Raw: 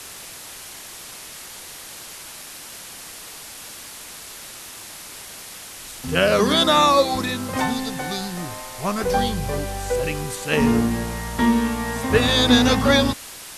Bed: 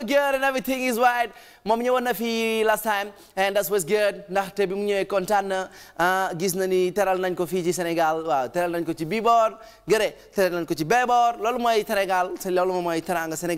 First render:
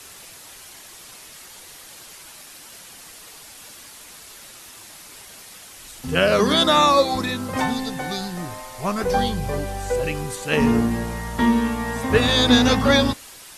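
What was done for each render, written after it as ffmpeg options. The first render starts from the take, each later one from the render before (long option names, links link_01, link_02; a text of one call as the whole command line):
ffmpeg -i in.wav -af "afftdn=noise_reduction=6:noise_floor=-39" out.wav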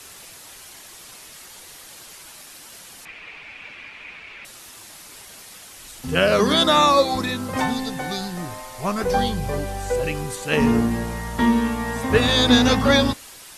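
ffmpeg -i in.wav -filter_complex "[0:a]asettb=1/sr,asplit=3[link_01][link_02][link_03];[link_01]atrim=end=3.054[link_04];[link_02]atrim=start=3.05:end=4.45,asetpts=PTS-STARTPTS,afade=type=in:duration=0.004:curve=qsin,afade=type=out:start_time=1.396:duration=0.004:curve=qsin,lowpass=frequency=2400:width_type=q:width=6.5[link_05];[link_03]atrim=start=4.446[link_06];[link_04][link_05]acrossfade=duration=0.004:curve1=hsin:curve2=qsin[link_07];[link_07][link_06]acrossfade=duration=0.004:curve1=qsin:curve2=hsin" out.wav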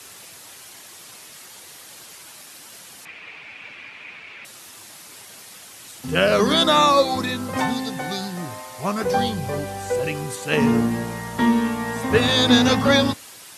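ffmpeg -i in.wav -af "highpass=frequency=86:width=0.5412,highpass=frequency=86:width=1.3066" out.wav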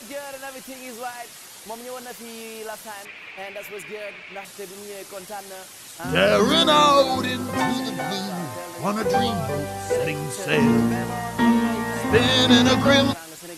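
ffmpeg -i in.wav -i bed.wav -filter_complex "[1:a]volume=-14dB[link_01];[0:a][link_01]amix=inputs=2:normalize=0" out.wav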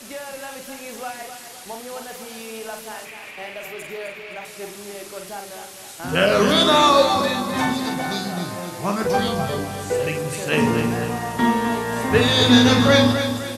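ffmpeg -i in.wav -filter_complex "[0:a]asplit=2[link_01][link_02];[link_02]adelay=45,volume=-6dB[link_03];[link_01][link_03]amix=inputs=2:normalize=0,aecho=1:1:257|514|771|1028|1285:0.376|0.154|0.0632|0.0259|0.0106" out.wav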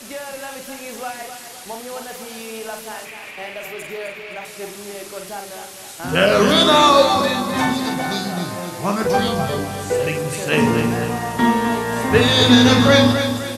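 ffmpeg -i in.wav -af "volume=2.5dB,alimiter=limit=-1dB:level=0:latency=1" out.wav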